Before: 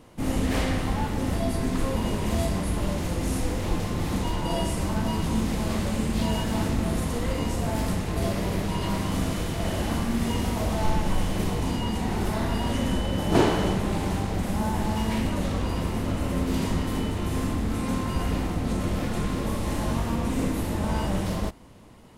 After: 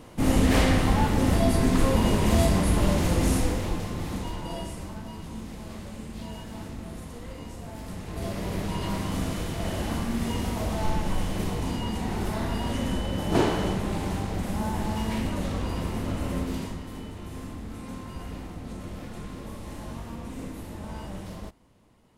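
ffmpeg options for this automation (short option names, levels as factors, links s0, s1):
-af "volume=5.31,afade=t=out:st=3.25:d=0.48:silence=0.421697,afade=t=out:st=3.73:d=1.31:silence=0.334965,afade=t=in:st=7.83:d=0.83:silence=0.316228,afade=t=out:st=16.35:d=0.43:silence=0.375837"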